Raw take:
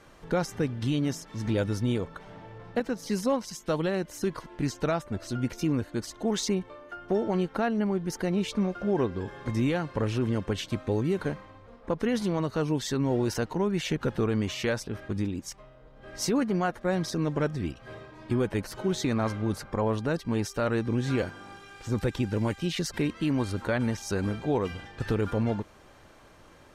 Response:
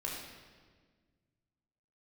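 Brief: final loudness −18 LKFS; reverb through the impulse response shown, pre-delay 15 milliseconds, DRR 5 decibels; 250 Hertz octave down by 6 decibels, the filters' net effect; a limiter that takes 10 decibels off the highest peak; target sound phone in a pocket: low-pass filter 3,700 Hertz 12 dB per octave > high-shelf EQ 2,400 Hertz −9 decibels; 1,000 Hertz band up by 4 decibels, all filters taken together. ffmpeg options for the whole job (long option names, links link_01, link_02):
-filter_complex "[0:a]equalizer=frequency=250:width_type=o:gain=-8.5,equalizer=frequency=1000:width_type=o:gain=7.5,alimiter=limit=-22.5dB:level=0:latency=1,asplit=2[link_01][link_02];[1:a]atrim=start_sample=2205,adelay=15[link_03];[link_02][link_03]afir=irnorm=-1:irlink=0,volume=-7dB[link_04];[link_01][link_04]amix=inputs=2:normalize=0,lowpass=3700,highshelf=frequency=2400:gain=-9,volume=15.5dB"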